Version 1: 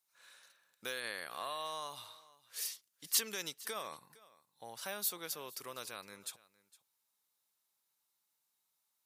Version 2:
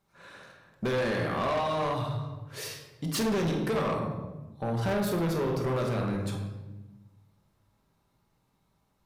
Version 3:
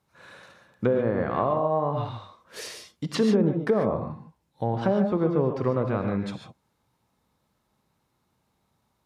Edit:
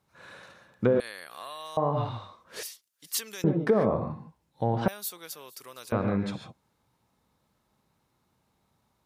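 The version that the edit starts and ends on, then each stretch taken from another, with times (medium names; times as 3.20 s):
3
1.00–1.77 s: from 1
2.63–3.44 s: from 1
4.88–5.92 s: from 1
not used: 2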